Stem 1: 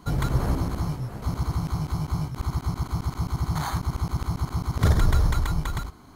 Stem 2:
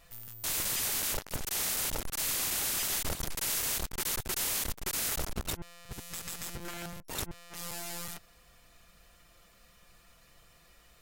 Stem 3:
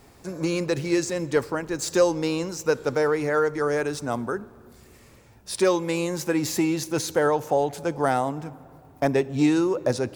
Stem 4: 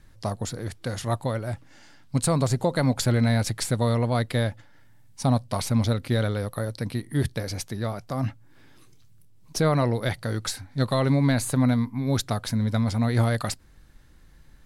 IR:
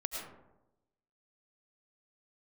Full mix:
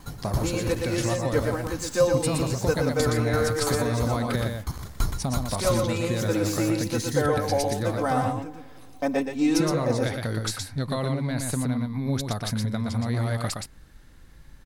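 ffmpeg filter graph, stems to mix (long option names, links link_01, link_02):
-filter_complex "[0:a]highshelf=frequency=3800:gain=11,aeval=exprs='val(0)*pow(10,-35*if(lt(mod(3*n/s,1),2*abs(3)/1000),1-mod(3*n/s,1)/(2*abs(3)/1000),(mod(3*n/s,1)-2*abs(3)/1000)/(1-2*abs(3)/1000))/20)':channel_layout=same,volume=-0.5dB,asplit=2[link_01][link_02];[link_02]volume=-10dB[link_03];[1:a]asoftclip=type=tanh:threshold=-36.5dB,volume=-15.5dB[link_04];[2:a]aecho=1:1:3.9:0.79,volume=-6dB,asplit=2[link_05][link_06];[link_06]volume=-4.5dB[link_07];[3:a]acompressor=threshold=-27dB:ratio=6,volume=2dB,asplit=3[link_08][link_09][link_10];[link_09]volume=-4.5dB[link_11];[link_10]apad=whole_len=485882[link_12];[link_04][link_12]sidechaingate=range=-33dB:threshold=-43dB:ratio=16:detection=peak[link_13];[link_03][link_07][link_11]amix=inputs=3:normalize=0,aecho=0:1:119:1[link_14];[link_01][link_13][link_05][link_08][link_14]amix=inputs=5:normalize=0"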